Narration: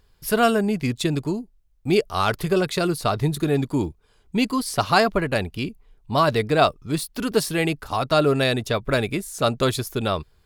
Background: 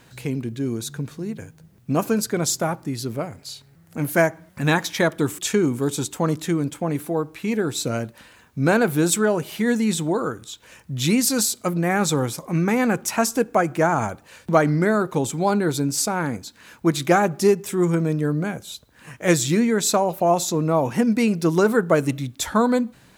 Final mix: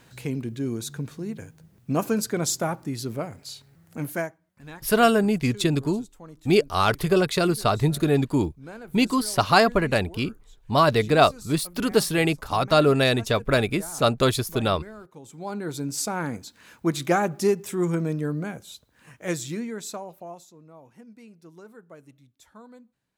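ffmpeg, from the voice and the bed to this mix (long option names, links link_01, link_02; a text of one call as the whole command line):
ffmpeg -i stem1.wav -i stem2.wav -filter_complex "[0:a]adelay=4600,volume=0.5dB[link_01];[1:a]volume=15.5dB,afade=type=out:start_time=3.86:duration=0.52:silence=0.1,afade=type=in:start_time=15.22:duration=0.92:silence=0.11885,afade=type=out:start_time=18.05:duration=2.45:silence=0.0595662[link_02];[link_01][link_02]amix=inputs=2:normalize=0" out.wav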